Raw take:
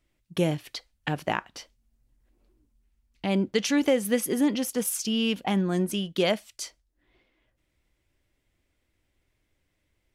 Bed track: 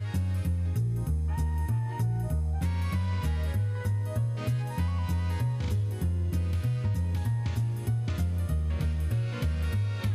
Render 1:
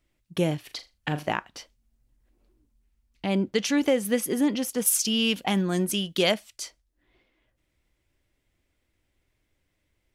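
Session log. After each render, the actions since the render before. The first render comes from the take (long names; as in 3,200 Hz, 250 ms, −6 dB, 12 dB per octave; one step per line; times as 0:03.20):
0:00.62–0:01.28: flutter between parallel walls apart 6.9 metres, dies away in 0.23 s
0:04.86–0:06.34: high-shelf EQ 2,300 Hz +7.5 dB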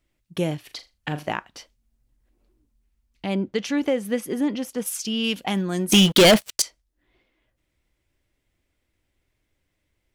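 0:03.34–0:05.24: high-shelf EQ 4,400 Hz −8.5 dB
0:05.92–0:06.62: leveller curve on the samples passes 5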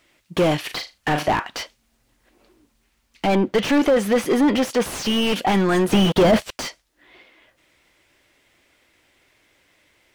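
mid-hump overdrive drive 26 dB, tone 5,200 Hz, clips at −8.5 dBFS
slew-rate limiting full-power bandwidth 170 Hz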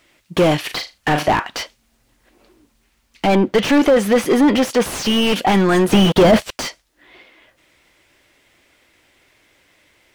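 level +4 dB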